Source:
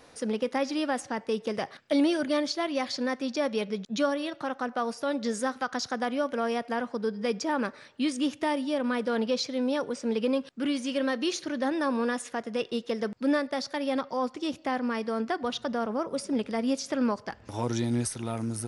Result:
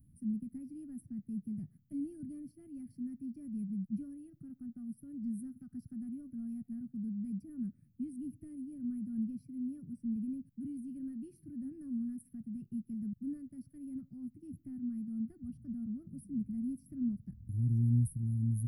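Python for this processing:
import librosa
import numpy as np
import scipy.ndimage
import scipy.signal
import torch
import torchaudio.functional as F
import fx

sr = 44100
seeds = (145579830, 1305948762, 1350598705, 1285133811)

y = scipy.signal.sosfilt(scipy.signal.cheby2(4, 50, [450.0, 7100.0], 'bandstop', fs=sr, output='sos'), x)
y = y * librosa.db_to_amplitude(5.0)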